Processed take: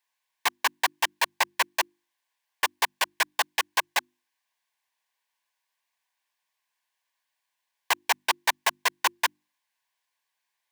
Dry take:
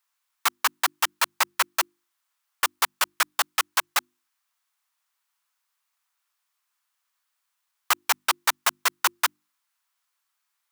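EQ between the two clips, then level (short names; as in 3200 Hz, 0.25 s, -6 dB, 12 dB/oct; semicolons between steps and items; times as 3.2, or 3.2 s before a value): Butterworth band-stop 1300 Hz, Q 3.1; low shelf 180 Hz -3.5 dB; high shelf 4500 Hz -9.5 dB; +2.5 dB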